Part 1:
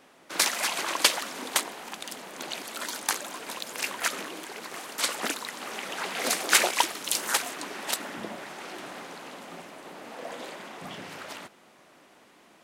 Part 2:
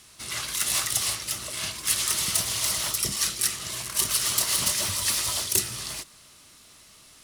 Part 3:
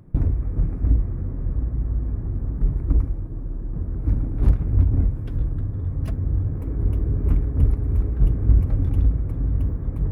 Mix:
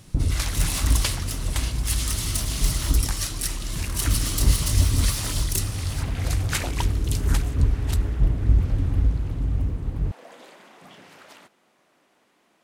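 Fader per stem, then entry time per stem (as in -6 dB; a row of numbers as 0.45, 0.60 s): -7.5, -4.0, -2.0 dB; 0.00, 0.00, 0.00 s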